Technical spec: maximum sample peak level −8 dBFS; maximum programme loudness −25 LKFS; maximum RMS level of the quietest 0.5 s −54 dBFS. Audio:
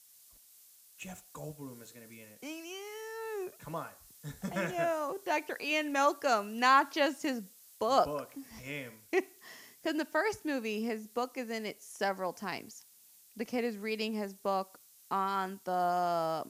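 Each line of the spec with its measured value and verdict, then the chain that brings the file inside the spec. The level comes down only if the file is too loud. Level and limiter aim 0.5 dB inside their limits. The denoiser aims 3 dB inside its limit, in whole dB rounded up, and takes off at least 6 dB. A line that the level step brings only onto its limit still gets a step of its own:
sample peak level −13.0 dBFS: in spec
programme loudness −33.5 LKFS: in spec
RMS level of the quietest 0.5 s −61 dBFS: in spec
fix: no processing needed

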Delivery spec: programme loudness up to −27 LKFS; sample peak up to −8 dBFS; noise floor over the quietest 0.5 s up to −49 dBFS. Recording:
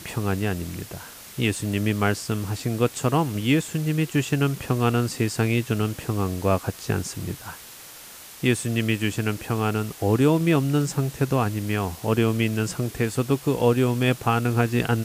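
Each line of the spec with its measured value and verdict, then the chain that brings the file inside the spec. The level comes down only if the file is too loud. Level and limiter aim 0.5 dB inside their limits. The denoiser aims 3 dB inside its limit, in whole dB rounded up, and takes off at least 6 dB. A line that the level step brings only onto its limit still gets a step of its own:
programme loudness −24.0 LKFS: out of spec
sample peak −6.5 dBFS: out of spec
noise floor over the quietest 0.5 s −43 dBFS: out of spec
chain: broadband denoise 6 dB, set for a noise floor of −43 dBFS
level −3.5 dB

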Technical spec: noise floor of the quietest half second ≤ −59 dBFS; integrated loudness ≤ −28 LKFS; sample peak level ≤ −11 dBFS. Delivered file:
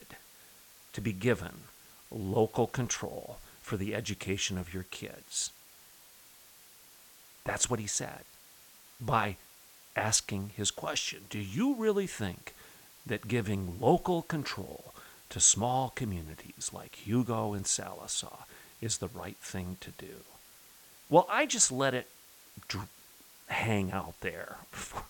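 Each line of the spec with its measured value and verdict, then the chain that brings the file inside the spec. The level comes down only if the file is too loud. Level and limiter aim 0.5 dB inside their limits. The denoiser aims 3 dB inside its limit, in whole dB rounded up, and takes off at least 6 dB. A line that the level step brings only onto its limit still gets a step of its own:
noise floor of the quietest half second −57 dBFS: out of spec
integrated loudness −32.0 LKFS: in spec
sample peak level −9.5 dBFS: out of spec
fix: broadband denoise 6 dB, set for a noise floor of −57 dBFS
brickwall limiter −11.5 dBFS

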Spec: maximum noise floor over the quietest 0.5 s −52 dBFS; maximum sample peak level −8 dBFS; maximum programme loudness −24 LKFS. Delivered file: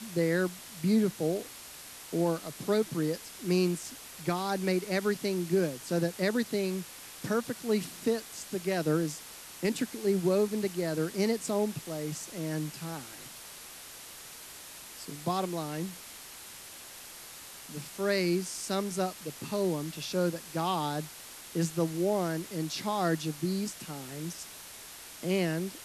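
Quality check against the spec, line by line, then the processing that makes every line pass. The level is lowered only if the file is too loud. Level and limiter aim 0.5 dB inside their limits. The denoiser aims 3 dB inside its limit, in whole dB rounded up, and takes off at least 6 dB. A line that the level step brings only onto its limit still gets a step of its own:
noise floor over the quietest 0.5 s −47 dBFS: out of spec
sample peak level −17.0 dBFS: in spec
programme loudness −32.0 LKFS: in spec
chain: broadband denoise 8 dB, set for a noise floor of −47 dBFS

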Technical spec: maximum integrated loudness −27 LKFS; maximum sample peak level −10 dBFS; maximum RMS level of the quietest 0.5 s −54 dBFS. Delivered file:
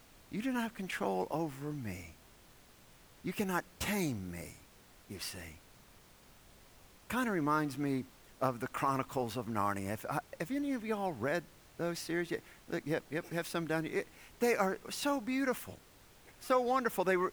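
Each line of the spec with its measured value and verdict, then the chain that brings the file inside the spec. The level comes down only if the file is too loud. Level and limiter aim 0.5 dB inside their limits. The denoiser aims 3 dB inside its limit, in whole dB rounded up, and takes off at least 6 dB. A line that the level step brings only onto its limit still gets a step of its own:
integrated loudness −36.0 LKFS: in spec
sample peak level −16.0 dBFS: in spec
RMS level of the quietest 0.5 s −60 dBFS: in spec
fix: no processing needed

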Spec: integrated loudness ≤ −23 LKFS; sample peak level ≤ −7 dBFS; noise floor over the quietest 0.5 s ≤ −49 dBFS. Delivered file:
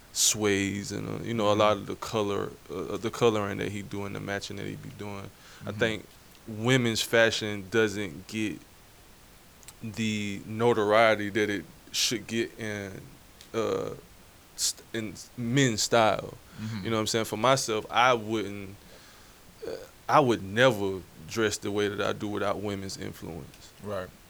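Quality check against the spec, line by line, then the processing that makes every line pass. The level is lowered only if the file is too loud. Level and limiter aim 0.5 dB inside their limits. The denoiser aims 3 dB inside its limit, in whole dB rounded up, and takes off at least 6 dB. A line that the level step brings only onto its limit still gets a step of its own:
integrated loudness −27.5 LKFS: in spec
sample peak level −6.0 dBFS: out of spec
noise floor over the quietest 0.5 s −53 dBFS: in spec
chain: brickwall limiter −7.5 dBFS

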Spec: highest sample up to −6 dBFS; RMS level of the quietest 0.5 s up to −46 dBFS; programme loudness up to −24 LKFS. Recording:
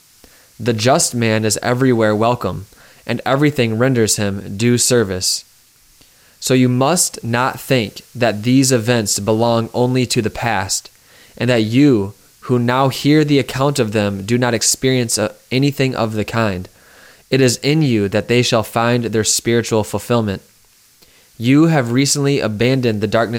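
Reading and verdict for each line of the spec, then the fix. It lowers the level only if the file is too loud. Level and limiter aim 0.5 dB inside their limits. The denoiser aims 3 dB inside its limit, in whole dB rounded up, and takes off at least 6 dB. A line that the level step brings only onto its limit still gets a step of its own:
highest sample −3.5 dBFS: out of spec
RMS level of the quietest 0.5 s −51 dBFS: in spec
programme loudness −15.5 LKFS: out of spec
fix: level −9 dB

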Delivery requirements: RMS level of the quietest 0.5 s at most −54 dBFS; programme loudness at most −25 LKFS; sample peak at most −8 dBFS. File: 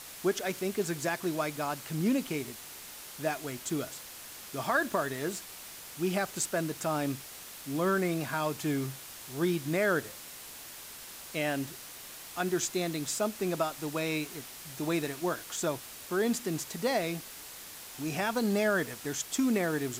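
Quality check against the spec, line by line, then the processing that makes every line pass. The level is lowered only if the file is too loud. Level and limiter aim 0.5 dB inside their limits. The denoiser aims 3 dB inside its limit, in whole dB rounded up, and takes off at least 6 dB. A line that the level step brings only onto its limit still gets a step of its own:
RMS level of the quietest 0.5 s −46 dBFS: out of spec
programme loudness −32.0 LKFS: in spec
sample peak −14.5 dBFS: in spec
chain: broadband denoise 11 dB, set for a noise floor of −46 dBFS

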